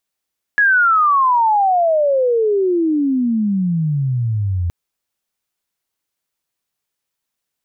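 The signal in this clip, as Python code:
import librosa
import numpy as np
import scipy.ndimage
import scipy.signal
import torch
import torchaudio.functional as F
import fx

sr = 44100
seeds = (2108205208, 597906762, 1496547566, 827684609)

y = fx.chirp(sr, length_s=4.12, from_hz=1700.0, to_hz=84.0, law='logarithmic', from_db=-9.5, to_db=-16.0)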